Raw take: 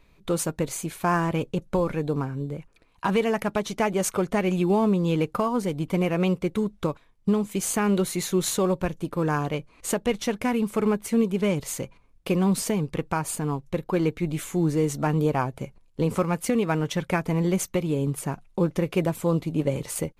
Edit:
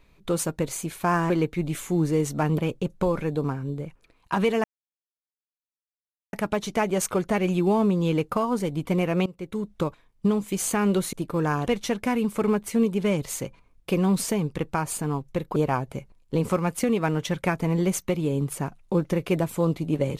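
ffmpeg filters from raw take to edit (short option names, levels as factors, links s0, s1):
-filter_complex "[0:a]asplit=8[s0][s1][s2][s3][s4][s5][s6][s7];[s0]atrim=end=1.302[s8];[s1]atrim=start=13.938:end=15.222[s9];[s2]atrim=start=1.298:end=3.36,asetpts=PTS-STARTPTS,afade=t=out:st=2.058:d=0.004:c=hsin,apad=pad_dur=1.69[s10];[s3]atrim=start=3.36:end=6.29,asetpts=PTS-STARTPTS,afade=t=in:d=0.004:c=hsin,afade=t=out:st=2.926:d=0.004:c=hsin:silence=0.0891251[s11];[s4]atrim=start=6.29:end=8.162,asetpts=PTS-STARTPTS,afade=t=in:d=0.56:silence=0.0891251[s12];[s5]atrim=start=8.958:end=9.502[s13];[s6]atrim=start=10.048:end=13.942[s14];[s7]atrim=start=15.218[s15];[s8][s9]acrossfade=d=0.004:c1=hsin:c2=hsin[s16];[s10][s11][s12]concat=n=3:v=0:a=1[s17];[s16][s17]acrossfade=d=0.004:c1=hsin:c2=hsin[s18];[s18][s13]acrossfade=d=0.004:c1=hsin:c2=hsin[s19];[s19][s14]acrossfade=d=0.004:c1=hsin:c2=hsin[s20];[s20][s15]acrossfade=d=0.004:c1=hsin:c2=hsin"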